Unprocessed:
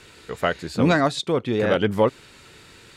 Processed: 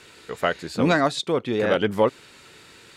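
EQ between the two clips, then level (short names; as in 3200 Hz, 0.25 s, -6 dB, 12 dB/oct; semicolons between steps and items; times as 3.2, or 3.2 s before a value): low shelf 110 Hz -11 dB; 0.0 dB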